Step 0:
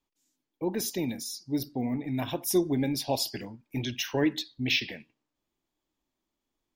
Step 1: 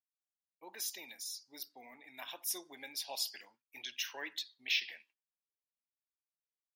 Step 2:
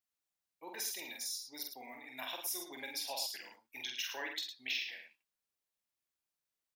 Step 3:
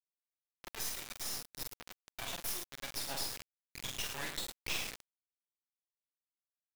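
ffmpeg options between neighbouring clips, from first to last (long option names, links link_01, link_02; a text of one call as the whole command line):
ffmpeg -i in.wav -af "highpass=1200,agate=range=-33dB:threshold=-58dB:ratio=3:detection=peak,volume=-5.5dB" out.wav
ffmpeg -i in.wav -filter_complex "[0:a]acompressor=threshold=-41dB:ratio=3,asplit=2[link_01][link_02];[link_02]aecho=0:1:46.65|107.9:0.631|0.398[link_03];[link_01][link_03]amix=inputs=2:normalize=0,volume=3dB" out.wav
ffmpeg -i in.wav -af "acrusher=bits=4:dc=4:mix=0:aa=0.000001,volume=3.5dB" out.wav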